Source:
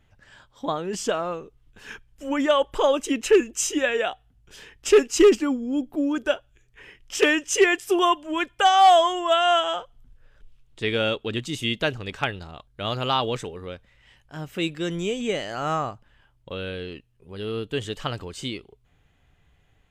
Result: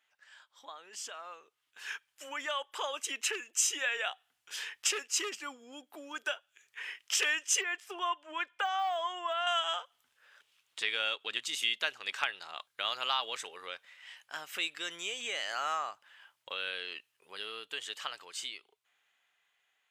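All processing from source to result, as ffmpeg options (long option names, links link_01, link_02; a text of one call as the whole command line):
ffmpeg -i in.wav -filter_complex "[0:a]asettb=1/sr,asplit=3[link_01][link_02][link_03];[link_01]atrim=end=7.614[link_04];[link_02]atrim=start=7.61:end=9.47,asetpts=PTS-STARTPTS,afade=type=in:duration=0.004:curve=qsin,afade=type=out:start_time=1.856:duration=0.004:curve=qsin,deesser=0.75,lowpass=frequency=1700:poles=1[link_05];[link_03]atrim=start=9.466[link_06];[link_04][link_05]acrossfade=duration=0.004:curve1=hsin:curve2=qsin[link_07];[link_07][link_06]acrossfade=duration=0.004:curve1=qsin:curve2=hsin,acompressor=threshold=-36dB:ratio=2.5,highpass=1200,dynaudnorm=framelen=130:gausssize=31:maxgain=11dB,volume=-4.5dB" out.wav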